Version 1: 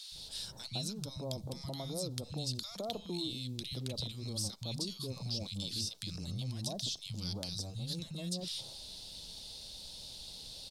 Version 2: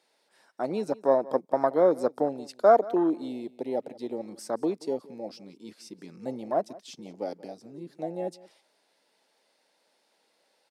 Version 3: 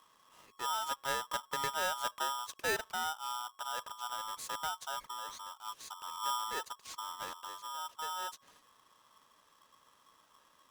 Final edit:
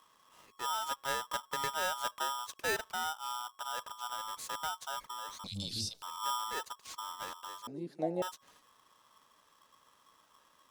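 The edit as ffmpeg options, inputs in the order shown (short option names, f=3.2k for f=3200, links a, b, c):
-filter_complex "[2:a]asplit=3[a][b][c];[a]atrim=end=5.442[d];[0:a]atrim=start=5.438:end=6.022[e];[b]atrim=start=6.018:end=7.672[f];[1:a]atrim=start=7.668:end=8.222[g];[c]atrim=start=8.218[h];[d][e]acrossfade=d=0.004:c1=hsin:c2=hsin[i];[i][f]acrossfade=d=0.004:c1=hsin:c2=hsin[j];[j][g]acrossfade=d=0.004:c1=hsin:c2=hsin[k];[k][h]acrossfade=d=0.004:c1=hsin:c2=hsin"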